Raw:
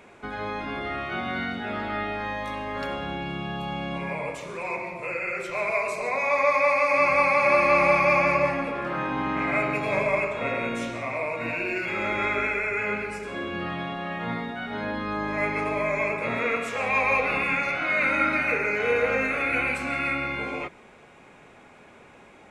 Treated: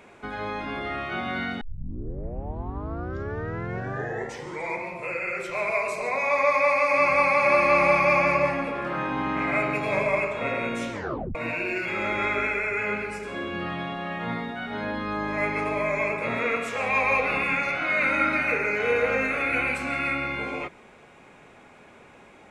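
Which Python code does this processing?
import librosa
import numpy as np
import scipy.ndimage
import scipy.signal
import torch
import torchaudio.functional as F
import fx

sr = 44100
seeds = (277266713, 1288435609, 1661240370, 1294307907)

y = fx.edit(x, sr, fx.tape_start(start_s=1.61, length_s=3.27),
    fx.tape_stop(start_s=10.92, length_s=0.43), tone=tone)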